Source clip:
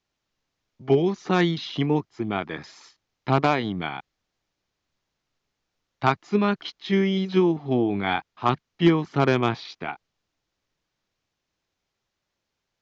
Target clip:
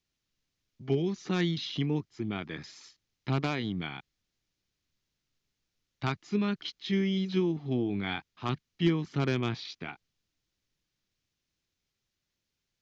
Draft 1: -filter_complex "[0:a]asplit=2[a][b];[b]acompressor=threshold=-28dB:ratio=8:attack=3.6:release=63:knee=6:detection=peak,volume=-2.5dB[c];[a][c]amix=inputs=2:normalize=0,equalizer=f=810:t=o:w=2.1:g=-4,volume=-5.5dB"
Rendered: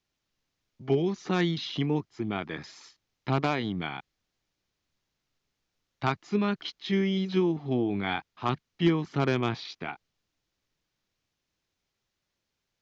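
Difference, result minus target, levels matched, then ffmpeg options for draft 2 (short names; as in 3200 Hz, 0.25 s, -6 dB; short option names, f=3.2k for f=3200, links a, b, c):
1000 Hz band +4.0 dB
-filter_complex "[0:a]asplit=2[a][b];[b]acompressor=threshold=-28dB:ratio=8:attack=3.6:release=63:knee=6:detection=peak,volume=-2.5dB[c];[a][c]amix=inputs=2:normalize=0,equalizer=f=810:t=o:w=2.1:g=-11.5,volume=-5.5dB"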